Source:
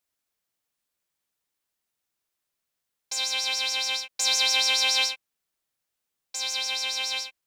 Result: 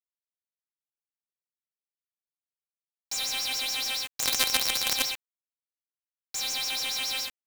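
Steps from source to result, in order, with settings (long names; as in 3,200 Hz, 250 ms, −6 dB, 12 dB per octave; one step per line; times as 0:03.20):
far-end echo of a speakerphone 210 ms, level −29 dB
log-companded quantiser 2 bits
level −4.5 dB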